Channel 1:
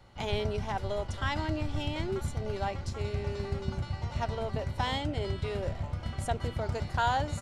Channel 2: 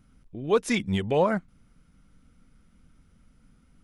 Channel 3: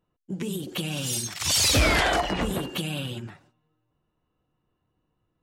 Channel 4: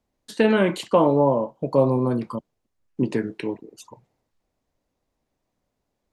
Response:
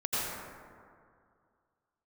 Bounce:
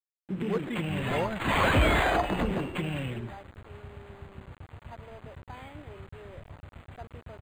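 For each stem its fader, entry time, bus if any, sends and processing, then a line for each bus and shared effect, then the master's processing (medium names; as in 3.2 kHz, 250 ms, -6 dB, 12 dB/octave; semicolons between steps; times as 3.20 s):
-12.5 dB, 0.70 s, no send, none
-9.0 dB, 0.00 s, no send, none
-1.0 dB, 0.00 s, no send, none
mute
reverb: none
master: bit crusher 8-bit; decimation joined by straight lines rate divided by 8×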